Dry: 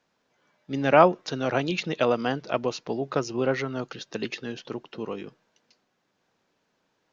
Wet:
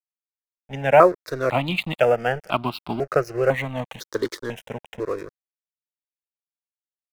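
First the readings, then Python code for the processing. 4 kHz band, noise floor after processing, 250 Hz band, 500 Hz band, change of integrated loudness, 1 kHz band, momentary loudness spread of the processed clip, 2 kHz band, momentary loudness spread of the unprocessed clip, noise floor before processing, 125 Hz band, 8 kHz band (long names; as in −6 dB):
+1.5 dB, below −85 dBFS, −0.5 dB, +4.5 dB, +4.0 dB, +3.5 dB, 17 LU, +4.0 dB, 16 LU, −74 dBFS, +4.0 dB, can't be measured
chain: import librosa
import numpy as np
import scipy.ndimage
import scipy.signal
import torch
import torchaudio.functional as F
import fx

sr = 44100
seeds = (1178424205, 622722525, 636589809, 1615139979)

p1 = fx.env_lowpass_down(x, sr, base_hz=2800.0, full_db=-19.5)
p2 = fx.rider(p1, sr, range_db=4, speed_s=0.5)
p3 = p1 + (p2 * 10.0 ** (-0.5 / 20.0))
p4 = np.sign(p3) * np.maximum(np.abs(p3) - 10.0 ** (-35.5 / 20.0), 0.0)
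p5 = fx.phaser_held(p4, sr, hz=2.0, low_hz=720.0, high_hz=1800.0)
y = p5 * 10.0 ** (2.0 / 20.0)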